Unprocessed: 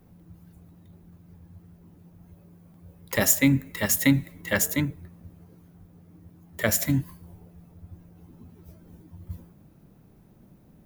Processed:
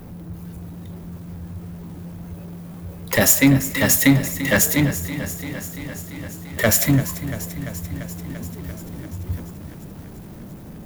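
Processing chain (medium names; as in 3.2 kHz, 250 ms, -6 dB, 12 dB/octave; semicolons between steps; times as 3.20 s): power-law waveshaper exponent 0.7; bit-crushed delay 342 ms, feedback 80%, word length 7-bit, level -13 dB; trim +2.5 dB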